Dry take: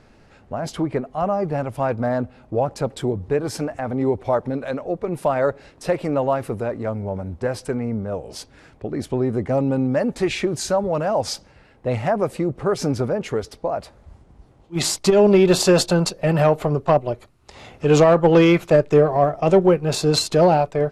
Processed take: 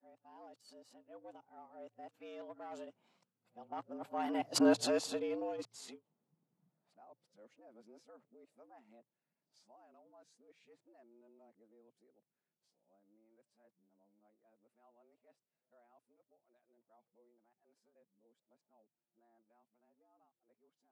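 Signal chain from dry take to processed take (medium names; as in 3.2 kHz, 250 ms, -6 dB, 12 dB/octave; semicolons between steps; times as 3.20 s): reverse the whole clip; Doppler pass-by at 4.62 s, 19 m/s, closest 1.7 m; frequency shift +110 Hz; trim -7.5 dB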